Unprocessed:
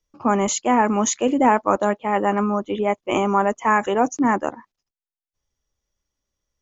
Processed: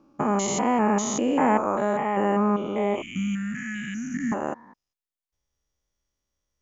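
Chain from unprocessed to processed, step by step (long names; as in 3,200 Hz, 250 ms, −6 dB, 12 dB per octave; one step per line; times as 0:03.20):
spectrum averaged block by block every 200 ms
0:03.02–0:04.32: inverse Chebyshev band-stop filter 390–1,100 Hz, stop band 40 dB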